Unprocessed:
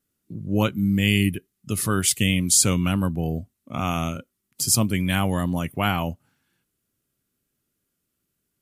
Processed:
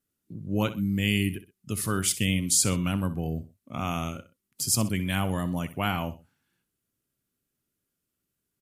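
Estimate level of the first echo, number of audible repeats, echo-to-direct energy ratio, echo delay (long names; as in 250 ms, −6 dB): −14.5 dB, 2, −14.0 dB, 63 ms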